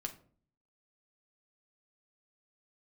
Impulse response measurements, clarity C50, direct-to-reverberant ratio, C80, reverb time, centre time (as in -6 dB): 14.0 dB, 3.0 dB, 18.5 dB, 0.50 s, 9 ms